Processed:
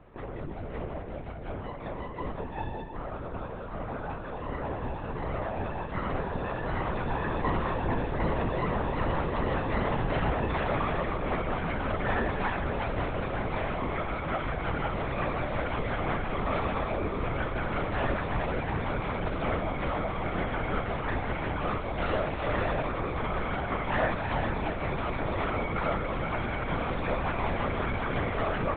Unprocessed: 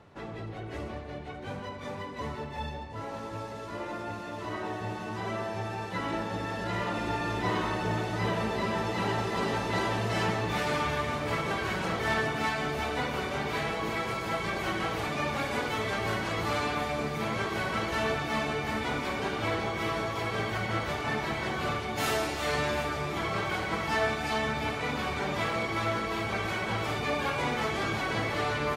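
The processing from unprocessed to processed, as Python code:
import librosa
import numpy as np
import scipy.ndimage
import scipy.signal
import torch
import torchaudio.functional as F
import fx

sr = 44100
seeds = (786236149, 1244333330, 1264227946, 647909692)

y = fx.lowpass(x, sr, hz=1400.0, slope=6)
y = fx.lpc_vocoder(y, sr, seeds[0], excitation='whisper', order=10)
y = F.gain(torch.from_numpy(y), 2.5).numpy()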